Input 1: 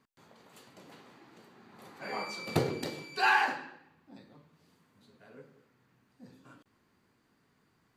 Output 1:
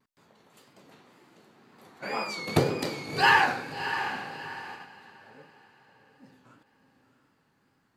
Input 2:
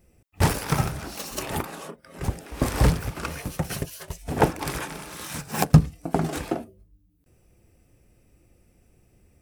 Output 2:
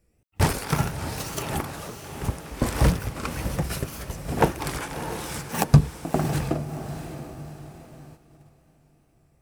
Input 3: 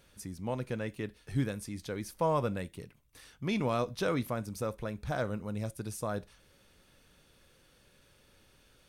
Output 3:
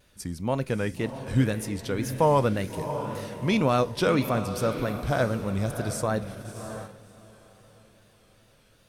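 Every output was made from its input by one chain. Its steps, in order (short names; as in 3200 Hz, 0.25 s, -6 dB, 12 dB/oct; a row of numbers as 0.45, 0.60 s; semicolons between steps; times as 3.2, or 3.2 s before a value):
wow and flutter 110 cents; diffused feedback echo 0.66 s, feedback 41%, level -9.5 dB; gate -46 dBFS, range -7 dB; match loudness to -27 LUFS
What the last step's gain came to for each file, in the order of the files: +5.5, -0.5, +8.0 dB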